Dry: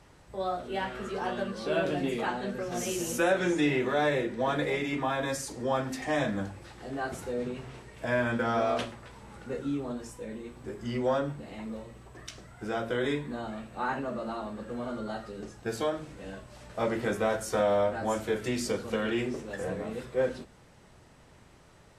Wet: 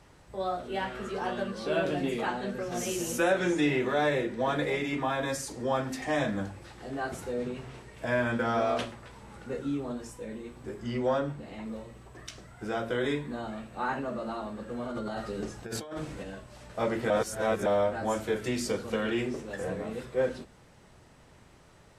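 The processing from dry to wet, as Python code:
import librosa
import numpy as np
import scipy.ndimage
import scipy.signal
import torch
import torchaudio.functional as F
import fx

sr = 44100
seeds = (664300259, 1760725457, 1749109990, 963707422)

y = fx.high_shelf(x, sr, hz=8100.0, db=-5.5, at=(10.8, 11.66))
y = fx.over_compress(y, sr, threshold_db=-38.0, ratio=-1.0, at=(14.85, 16.22), fade=0.02)
y = fx.edit(y, sr, fx.reverse_span(start_s=17.1, length_s=0.56), tone=tone)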